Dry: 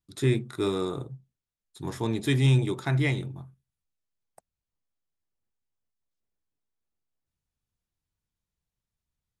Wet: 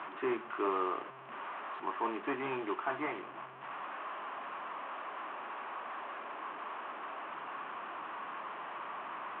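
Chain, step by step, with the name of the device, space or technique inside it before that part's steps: Wiener smoothing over 15 samples; digital answering machine (BPF 350–3100 Hz; delta modulation 16 kbps, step -40 dBFS; speaker cabinet 440–3100 Hz, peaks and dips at 480 Hz -9 dB, 1100 Hz +9 dB, 2100 Hz -4 dB); gain +3 dB

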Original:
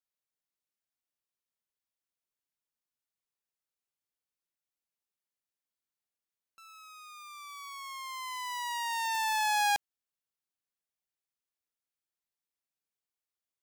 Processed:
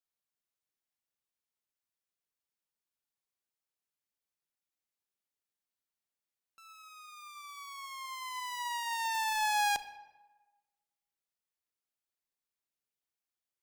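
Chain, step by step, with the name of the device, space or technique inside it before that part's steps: saturated reverb return (on a send at -10 dB: reverb RT60 1.2 s, pre-delay 14 ms + soft clip -28 dBFS, distortion -11 dB); on the sum: gain -2 dB

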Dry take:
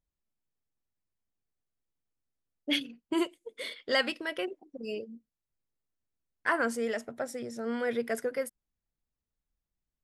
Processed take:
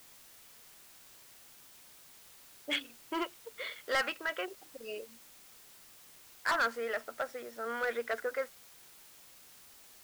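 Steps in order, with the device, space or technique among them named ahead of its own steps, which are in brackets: drive-through speaker (BPF 540–3000 Hz; bell 1300 Hz +8 dB 0.56 oct; hard clip -25.5 dBFS, distortion -8 dB; white noise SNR 17 dB)

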